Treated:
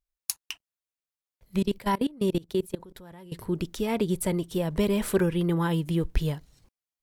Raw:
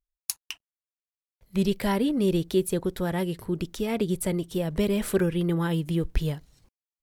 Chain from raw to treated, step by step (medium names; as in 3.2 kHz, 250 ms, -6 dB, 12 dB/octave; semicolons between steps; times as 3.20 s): dynamic bell 970 Hz, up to +7 dB, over -51 dBFS, Q 4.5; 1.59–3.32 s: level held to a coarse grid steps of 23 dB